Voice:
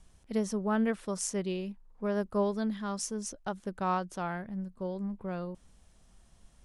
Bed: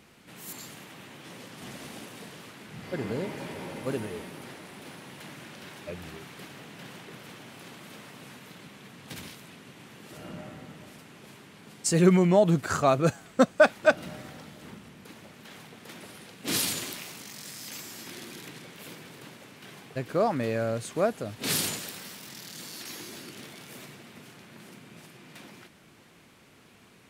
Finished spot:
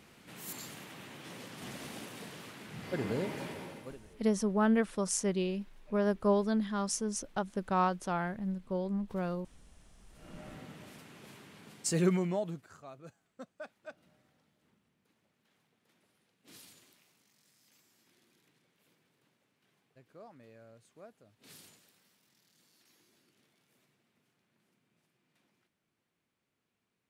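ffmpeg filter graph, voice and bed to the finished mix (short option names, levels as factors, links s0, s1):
-filter_complex "[0:a]adelay=3900,volume=1.19[s0];[1:a]volume=6.68,afade=t=out:st=3.4:d=0.58:silence=0.1,afade=t=in:st=10.12:d=0.45:silence=0.11885,afade=t=out:st=11.58:d=1.1:silence=0.0630957[s1];[s0][s1]amix=inputs=2:normalize=0"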